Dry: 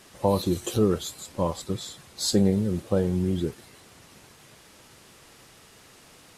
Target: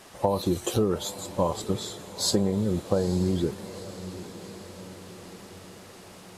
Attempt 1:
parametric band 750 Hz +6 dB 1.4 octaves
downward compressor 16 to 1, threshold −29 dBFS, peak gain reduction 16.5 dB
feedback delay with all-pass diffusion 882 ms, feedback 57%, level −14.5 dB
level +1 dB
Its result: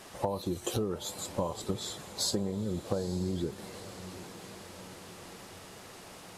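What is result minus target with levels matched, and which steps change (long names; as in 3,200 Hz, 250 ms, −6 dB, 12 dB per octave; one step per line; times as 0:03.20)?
downward compressor: peak gain reduction +8.5 dB
change: downward compressor 16 to 1, threshold −20 dBFS, peak gain reduction 8 dB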